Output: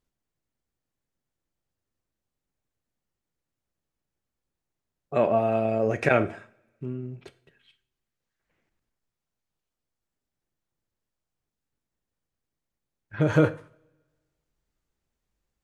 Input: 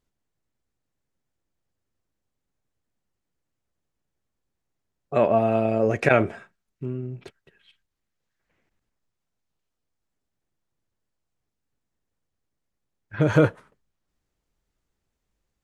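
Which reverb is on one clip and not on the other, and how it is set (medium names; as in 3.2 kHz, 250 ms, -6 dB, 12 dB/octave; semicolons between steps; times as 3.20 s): two-slope reverb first 0.43 s, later 1.5 s, from -24 dB, DRR 11.5 dB; trim -3 dB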